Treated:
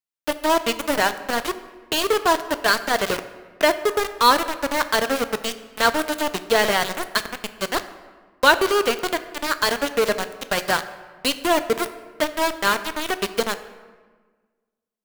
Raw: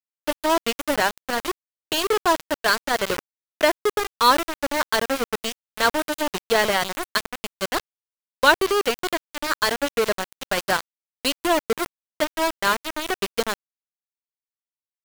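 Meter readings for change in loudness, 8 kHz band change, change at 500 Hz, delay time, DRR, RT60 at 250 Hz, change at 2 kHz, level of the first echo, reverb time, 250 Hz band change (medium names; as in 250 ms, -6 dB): +1.5 dB, +1.0 dB, +1.5 dB, no echo, 10.5 dB, 1.8 s, +1.5 dB, no echo, 1.4 s, +1.5 dB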